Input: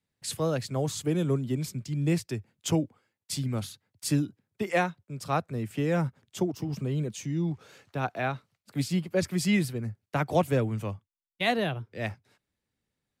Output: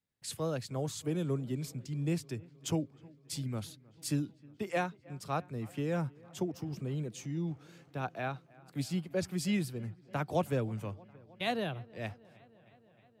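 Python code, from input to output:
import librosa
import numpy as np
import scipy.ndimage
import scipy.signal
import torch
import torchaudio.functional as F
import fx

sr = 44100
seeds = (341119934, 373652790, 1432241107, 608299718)

p1 = fx.dynamic_eq(x, sr, hz=2000.0, q=5.6, threshold_db=-50.0, ratio=4.0, max_db=-5)
p2 = p1 + fx.echo_wet_lowpass(p1, sr, ms=313, feedback_pct=74, hz=2900.0, wet_db=-24.0, dry=0)
y = p2 * 10.0 ** (-6.5 / 20.0)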